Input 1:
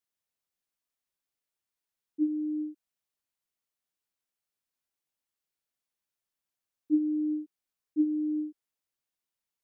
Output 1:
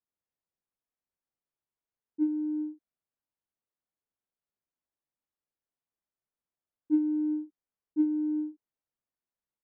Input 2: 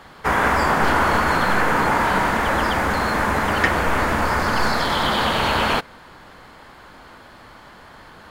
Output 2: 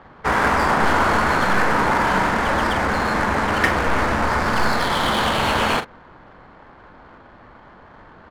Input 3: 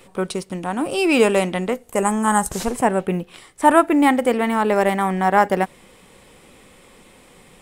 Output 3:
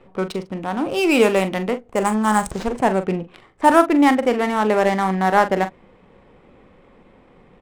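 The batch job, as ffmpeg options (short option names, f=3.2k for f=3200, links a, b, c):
-filter_complex "[0:a]adynamicsmooth=sensitivity=4:basefreq=1.5k,asplit=2[a][b];[b]adelay=42,volume=-11dB[c];[a][c]amix=inputs=2:normalize=0"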